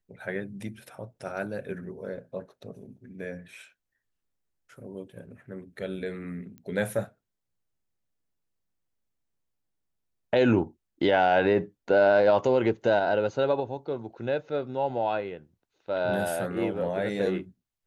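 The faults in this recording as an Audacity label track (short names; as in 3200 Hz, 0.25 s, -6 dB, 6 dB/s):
6.580000	6.580000	pop -32 dBFS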